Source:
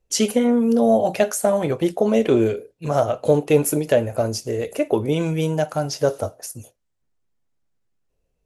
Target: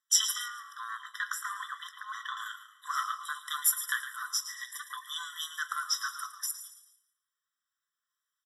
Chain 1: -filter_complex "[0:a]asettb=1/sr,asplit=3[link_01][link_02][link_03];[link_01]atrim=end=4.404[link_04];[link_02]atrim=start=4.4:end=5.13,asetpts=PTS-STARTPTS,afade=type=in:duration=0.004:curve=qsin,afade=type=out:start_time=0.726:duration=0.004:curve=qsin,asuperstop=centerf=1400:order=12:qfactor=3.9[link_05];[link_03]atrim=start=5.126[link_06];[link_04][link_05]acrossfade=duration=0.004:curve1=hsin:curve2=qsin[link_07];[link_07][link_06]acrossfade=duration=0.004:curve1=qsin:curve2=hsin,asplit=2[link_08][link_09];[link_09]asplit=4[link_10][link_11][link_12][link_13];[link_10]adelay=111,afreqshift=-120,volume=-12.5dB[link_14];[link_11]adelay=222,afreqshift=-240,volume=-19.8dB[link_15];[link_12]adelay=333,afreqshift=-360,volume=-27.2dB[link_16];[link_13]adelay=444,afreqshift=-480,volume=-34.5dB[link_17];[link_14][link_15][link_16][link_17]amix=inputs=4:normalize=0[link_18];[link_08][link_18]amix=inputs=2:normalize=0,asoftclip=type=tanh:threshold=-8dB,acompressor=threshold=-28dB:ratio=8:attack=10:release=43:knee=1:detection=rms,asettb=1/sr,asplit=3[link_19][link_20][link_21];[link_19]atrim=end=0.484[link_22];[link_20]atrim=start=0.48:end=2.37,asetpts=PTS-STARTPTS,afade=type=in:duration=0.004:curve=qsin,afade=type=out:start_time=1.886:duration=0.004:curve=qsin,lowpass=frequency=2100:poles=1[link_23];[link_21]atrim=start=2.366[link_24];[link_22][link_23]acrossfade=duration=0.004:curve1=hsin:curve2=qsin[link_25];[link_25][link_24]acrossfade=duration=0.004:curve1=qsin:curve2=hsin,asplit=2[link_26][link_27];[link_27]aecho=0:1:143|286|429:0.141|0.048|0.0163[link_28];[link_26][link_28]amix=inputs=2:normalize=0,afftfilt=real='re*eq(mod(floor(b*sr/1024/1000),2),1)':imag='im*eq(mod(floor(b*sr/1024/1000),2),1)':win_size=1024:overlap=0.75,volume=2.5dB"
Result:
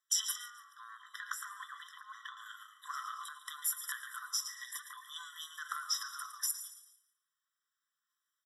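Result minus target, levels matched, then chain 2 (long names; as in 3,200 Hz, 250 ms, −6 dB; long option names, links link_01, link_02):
downward compressor: peak gain reduction +14.5 dB
-filter_complex "[0:a]asettb=1/sr,asplit=3[link_01][link_02][link_03];[link_01]atrim=end=4.404[link_04];[link_02]atrim=start=4.4:end=5.13,asetpts=PTS-STARTPTS,afade=type=in:duration=0.004:curve=qsin,afade=type=out:start_time=0.726:duration=0.004:curve=qsin,asuperstop=centerf=1400:order=12:qfactor=3.9[link_05];[link_03]atrim=start=5.126[link_06];[link_04][link_05]acrossfade=duration=0.004:curve1=hsin:curve2=qsin[link_07];[link_07][link_06]acrossfade=duration=0.004:curve1=qsin:curve2=hsin,asplit=2[link_08][link_09];[link_09]asplit=4[link_10][link_11][link_12][link_13];[link_10]adelay=111,afreqshift=-120,volume=-12.5dB[link_14];[link_11]adelay=222,afreqshift=-240,volume=-19.8dB[link_15];[link_12]adelay=333,afreqshift=-360,volume=-27.2dB[link_16];[link_13]adelay=444,afreqshift=-480,volume=-34.5dB[link_17];[link_14][link_15][link_16][link_17]amix=inputs=4:normalize=0[link_18];[link_08][link_18]amix=inputs=2:normalize=0,asoftclip=type=tanh:threshold=-8dB,asettb=1/sr,asplit=3[link_19][link_20][link_21];[link_19]atrim=end=0.484[link_22];[link_20]atrim=start=0.48:end=2.37,asetpts=PTS-STARTPTS,afade=type=in:duration=0.004:curve=qsin,afade=type=out:start_time=1.886:duration=0.004:curve=qsin,lowpass=frequency=2100:poles=1[link_23];[link_21]atrim=start=2.366[link_24];[link_22][link_23]acrossfade=duration=0.004:curve1=hsin:curve2=qsin[link_25];[link_25][link_24]acrossfade=duration=0.004:curve1=qsin:curve2=hsin,asplit=2[link_26][link_27];[link_27]aecho=0:1:143|286|429:0.141|0.048|0.0163[link_28];[link_26][link_28]amix=inputs=2:normalize=0,afftfilt=real='re*eq(mod(floor(b*sr/1024/1000),2),1)':imag='im*eq(mod(floor(b*sr/1024/1000),2),1)':win_size=1024:overlap=0.75,volume=2.5dB"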